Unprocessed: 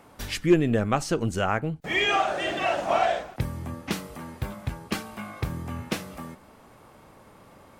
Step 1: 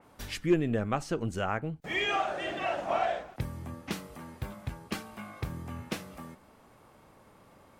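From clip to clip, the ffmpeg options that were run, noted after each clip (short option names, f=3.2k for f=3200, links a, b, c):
-af "adynamicequalizer=threshold=0.00708:dfrequency=3400:dqfactor=0.7:tfrequency=3400:tqfactor=0.7:attack=5:release=100:ratio=0.375:range=3:mode=cutabove:tftype=highshelf,volume=-6dB"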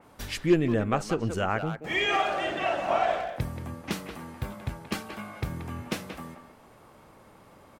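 -filter_complex "[0:a]asplit=2[a][b];[b]adelay=180,highpass=300,lowpass=3.4k,asoftclip=type=hard:threshold=-25.5dB,volume=-7dB[c];[a][c]amix=inputs=2:normalize=0,volume=3.5dB"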